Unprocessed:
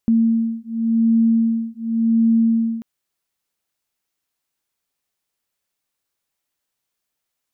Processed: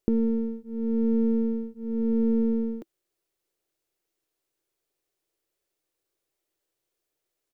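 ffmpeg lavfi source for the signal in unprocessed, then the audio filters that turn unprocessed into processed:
-f lavfi -i "aevalsrc='0.133*(sin(2*PI*227*t)+sin(2*PI*227.9*t))':d=2.74:s=44100"
-af "aeval=exprs='if(lt(val(0),0),0.708*val(0),val(0))':c=same,firequalizer=gain_entry='entry(140,0);entry(230,-8);entry(330,11);entry(860,-3)':delay=0.05:min_phase=1"

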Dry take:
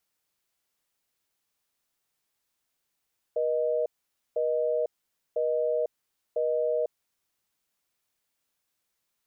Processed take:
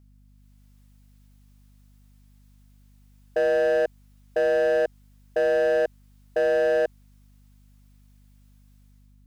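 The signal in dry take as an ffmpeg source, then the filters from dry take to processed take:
-f lavfi -i "aevalsrc='0.0473*(sin(2*PI*480*t)+sin(2*PI*620*t))*clip(min(mod(t,1),0.5-mod(t,1))/0.005,0,1)':d=3.52:s=44100"
-af "asoftclip=type=hard:threshold=-27.5dB,dynaudnorm=f=130:g=7:m=9dB,aeval=exprs='val(0)+0.002*(sin(2*PI*50*n/s)+sin(2*PI*2*50*n/s)/2+sin(2*PI*3*50*n/s)/3+sin(2*PI*4*50*n/s)/4+sin(2*PI*5*50*n/s)/5)':c=same"

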